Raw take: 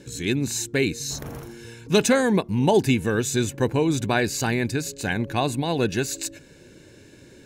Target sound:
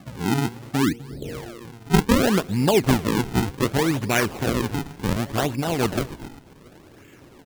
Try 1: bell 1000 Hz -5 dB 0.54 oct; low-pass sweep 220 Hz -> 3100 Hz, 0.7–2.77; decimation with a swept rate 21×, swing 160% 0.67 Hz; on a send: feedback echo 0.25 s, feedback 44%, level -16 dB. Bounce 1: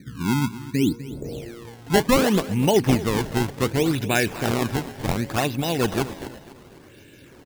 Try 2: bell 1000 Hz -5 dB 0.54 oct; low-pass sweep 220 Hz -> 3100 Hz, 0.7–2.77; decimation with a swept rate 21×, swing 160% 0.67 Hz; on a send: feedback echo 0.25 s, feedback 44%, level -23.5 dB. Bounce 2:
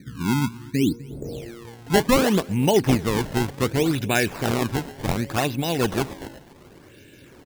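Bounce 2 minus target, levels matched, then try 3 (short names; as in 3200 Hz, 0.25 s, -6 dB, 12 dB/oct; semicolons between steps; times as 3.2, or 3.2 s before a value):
decimation with a swept rate: distortion -6 dB
bell 1000 Hz -5 dB 0.54 oct; low-pass sweep 220 Hz -> 3100 Hz, 0.7–2.77; decimation with a swept rate 44×, swing 160% 0.67 Hz; on a send: feedback echo 0.25 s, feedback 44%, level -23.5 dB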